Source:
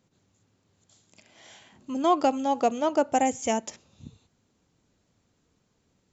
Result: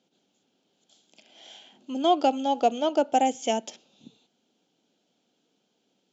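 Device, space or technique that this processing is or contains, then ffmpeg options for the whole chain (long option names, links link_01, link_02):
television speaker: -af "highpass=frequency=210:width=0.5412,highpass=frequency=210:width=1.3066,equalizer=frequency=750:width_type=q:width=4:gain=4,equalizer=frequency=1100:width_type=q:width=4:gain=-10,equalizer=frequency=1900:width_type=q:width=4:gain=-8,equalizer=frequency=3200:width_type=q:width=4:gain=9,lowpass=frequency=6600:width=0.5412,lowpass=frequency=6600:width=1.3066"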